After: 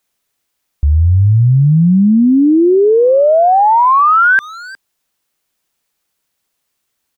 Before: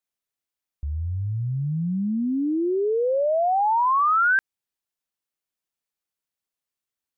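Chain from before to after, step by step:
far-end echo of a speakerphone 360 ms, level −22 dB
boost into a limiter +22.5 dB
level −4.5 dB

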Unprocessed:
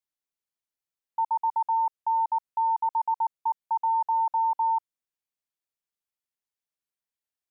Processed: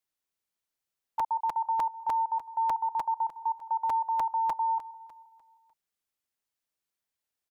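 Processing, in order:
dynamic equaliser 670 Hz, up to +5 dB, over −40 dBFS, Q 1.2
brickwall limiter −27 dBFS, peak gain reduction 9.5 dB
repeating echo 158 ms, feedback 58%, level −15.5 dB
regular buffer underruns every 0.30 s, samples 256, repeat, from 0:00.89
level +3.5 dB

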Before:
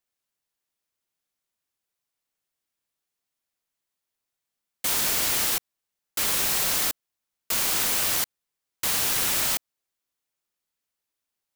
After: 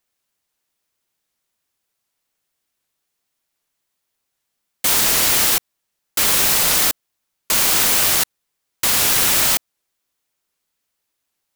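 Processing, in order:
wow of a warped record 78 rpm, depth 160 cents
level +8.5 dB

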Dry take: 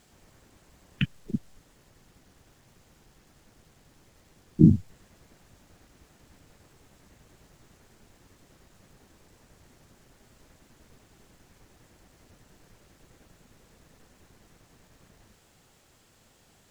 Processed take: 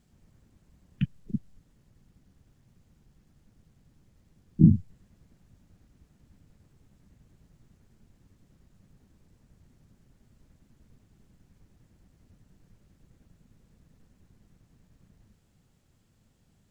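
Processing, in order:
drawn EQ curve 200 Hz 0 dB, 360 Hz −9 dB, 770 Hz −13 dB

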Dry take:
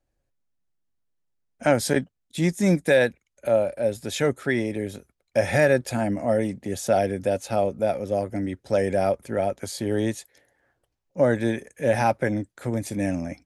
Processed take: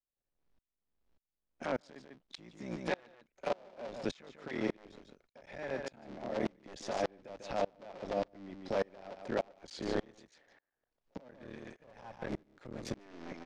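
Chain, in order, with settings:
sub-harmonics by changed cycles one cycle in 3, muted
low-pass filter 5,500 Hz 24 dB per octave
parametric band 85 Hz −13.5 dB 1.1 octaves
downward compressor 5 to 1, threshold −30 dBFS, peak gain reduction 14 dB
brickwall limiter −25 dBFS, peak gain reduction 9 dB
0:11.31–0:12.96: tube saturation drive 30 dB, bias 0.65
single-tap delay 146 ms −9.5 dB
tremolo with a ramp in dB swelling 1.7 Hz, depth 31 dB
level +5.5 dB

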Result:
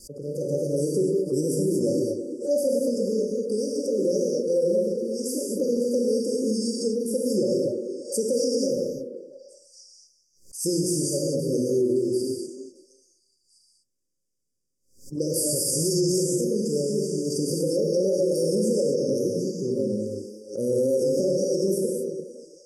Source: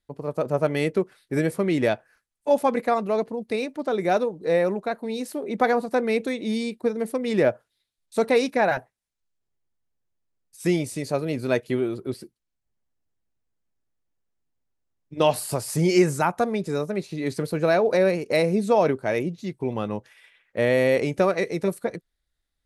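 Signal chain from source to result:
low-pass filter 9,100 Hz 12 dB per octave
spectral tilt +2.5 dB per octave
reverb whose tail is shaped and stops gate 270 ms flat, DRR −2.5 dB
pitch vibrato 3.6 Hz 36 cents
linear-phase brick-wall band-stop 580–4,600 Hz
on a send: echo through a band-pass that steps 341 ms, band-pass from 350 Hz, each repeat 1.4 octaves, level −8.5 dB
on the sum: brickwall limiter −16.5 dBFS, peak gain reduction 10 dB
background raised ahead of every attack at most 130 dB per second
level +1.5 dB

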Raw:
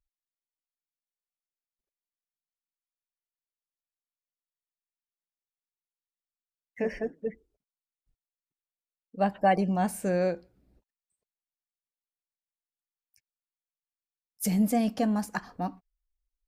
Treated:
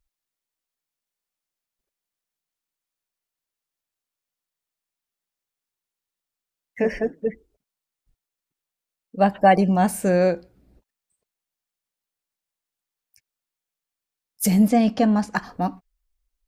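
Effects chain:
0:14.68–0:15.36: low-pass filter 5,500 Hz 12 dB per octave
level +8 dB

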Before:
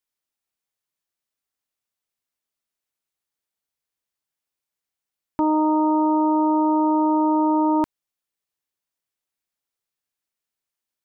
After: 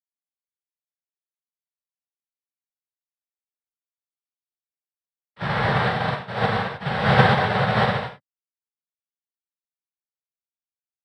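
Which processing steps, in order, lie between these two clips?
Chebyshev low-pass filter 1,200 Hz, order 4
pitch-shifted copies added +7 semitones −5 dB, +12 semitones −4 dB
ring modulation 430 Hz
cochlear-implant simulation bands 6
gate pattern "xxx.xx.x..x.." 86 BPM −12 dB
reverb whose tail is shaped and stops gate 360 ms flat, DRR −7.5 dB
expander for the loud parts 2.5 to 1, over −27 dBFS

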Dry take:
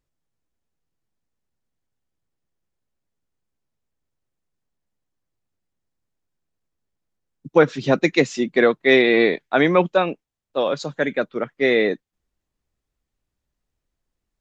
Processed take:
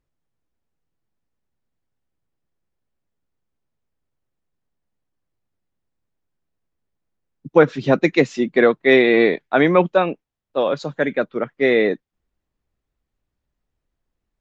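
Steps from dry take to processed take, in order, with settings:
high-shelf EQ 4,900 Hz −12 dB
level +2 dB

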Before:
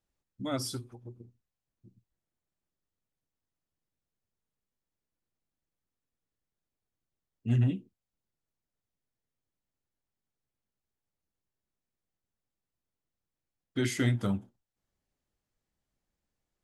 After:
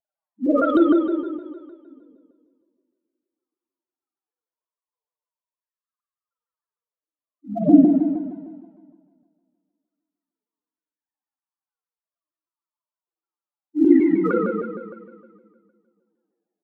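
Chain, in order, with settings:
three sine waves on the formant tracks
Butterworth high-pass 190 Hz 48 dB per octave
flat-topped bell 680 Hz +13 dB 2.7 octaves
comb filter 6.3 ms, depth 90%
downward compressor, threshold −16 dBFS, peak gain reduction 10 dB
leveller curve on the samples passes 2
spectral peaks only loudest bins 1
phase shifter 1.3 Hz, delay 4.9 ms, feedback 63%
tape delay 201 ms, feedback 67%, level −19 dB, low-pass 1,100 Hz
convolution reverb RT60 1.7 s, pre-delay 46 ms, DRR −7.5 dB
pitch modulation by a square or saw wave saw down 6.5 Hz, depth 160 cents
level −1.5 dB

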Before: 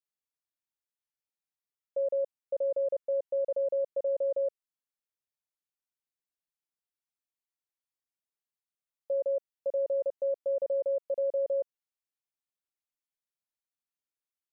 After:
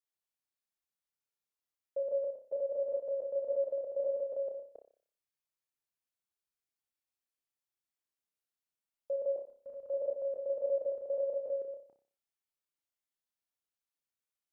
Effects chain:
delay that plays each chunk backwards 140 ms, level −7 dB
0:09.36–0:09.89: flat-topped bell 510 Hz −12 dB
flutter between parallel walls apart 5.2 metres, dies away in 0.43 s
level −4 dB

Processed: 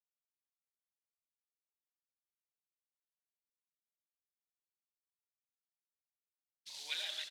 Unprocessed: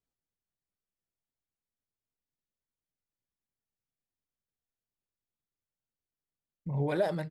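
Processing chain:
high shelf with overshoot 4,400 Hz −13.5 dB, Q 3
in parallel at +2 dB: output level in coarse steps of 14 dB
on the sum: brickwall limiter −21.5 dBFS, peak gain reduction 9 dB
log-companded quantiser 6 bits
four-pole ladder band-pass 4,700 Hz, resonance 50%
phase shifter 0.65 Hz, delay 4.4 ms, feedback 25%
on a send: loudspeakers that aren't time-aligned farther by 31 metres −9 dB, 46 metres −10 dB
on the sum: level +16.5 dB

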